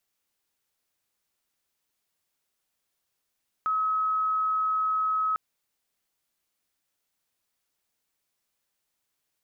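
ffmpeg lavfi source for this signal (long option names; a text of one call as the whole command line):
ffmpeg -f lavfi -i "aevalsrc='0.0708*sin(2*PI*1280*t)':duration=1.7:sample_rate=44100" out.wav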